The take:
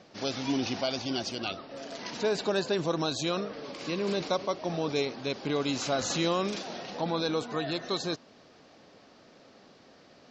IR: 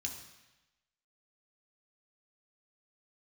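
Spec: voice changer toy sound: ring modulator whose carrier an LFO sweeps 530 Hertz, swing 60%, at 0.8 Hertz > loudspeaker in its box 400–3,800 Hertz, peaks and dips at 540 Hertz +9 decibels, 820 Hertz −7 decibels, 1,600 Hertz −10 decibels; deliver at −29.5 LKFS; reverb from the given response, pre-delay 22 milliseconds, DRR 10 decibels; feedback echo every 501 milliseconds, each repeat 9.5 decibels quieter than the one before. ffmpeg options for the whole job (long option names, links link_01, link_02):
-filter_complex "[0:a]aecho=1:1:501|1002|1503|2004:0.335|0.111|0.0365|0.012,asplit=2[link_01][link_02];[1:a]atrim=start_sample=2205,adelay=22[link_03];[link_02][link_03]afir=irnorm=-1:irlink=0,volume=-9dB[link_04];[link_01][link_04]amix=inputs=2:normalize=0,aeval=exprs='val(0)*sin(2*PI*530*n/s+530*0.6/0.8*sin(2*PI*0.8*n/s))':channel_layout=same,highpass=400,equalizer=frequency=540:width_type=q:width=4:gain=9,equalizer=frequency=820:width_type=q:width=4:gain=-7,equalizer=frequency=1600:width_type=q:width=4:gain=-10,lowpass=frequency=3800:width=0.5412,lowpass=frequency=3800:width=1.3066,volume=5.5dB"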